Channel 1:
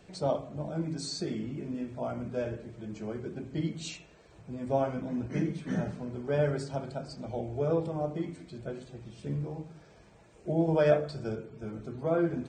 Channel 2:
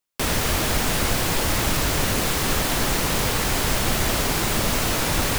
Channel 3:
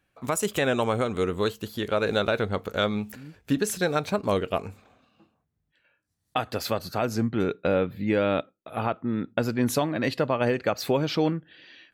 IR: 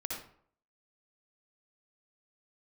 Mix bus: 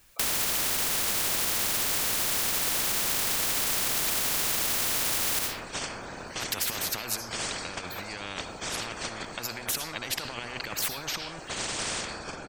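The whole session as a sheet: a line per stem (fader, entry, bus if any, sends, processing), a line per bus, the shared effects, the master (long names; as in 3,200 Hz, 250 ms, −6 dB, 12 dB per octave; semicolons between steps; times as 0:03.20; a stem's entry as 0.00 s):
−6.0 dB, 1.00 s, send −9 dB, compressor on every frequency bin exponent 0.4; noise gate −21 dBFS, range −22 dB; random phases in short frames
−4.5 dB, 0.00 s, send −3.5 dB, brickwall limiter −18 dBFS, peak gain reduction 9 dB
−0.5 dB, 0.00 s, send −18.5 dB, spectral dynamics exaggerated over time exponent 1.5; compressor whose output falls as the input rises −38 dBFS, ratio −1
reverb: on, RT60 0.60 s, pre-delay 55 ms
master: every bin compressed towards the loudest bin 10 to 1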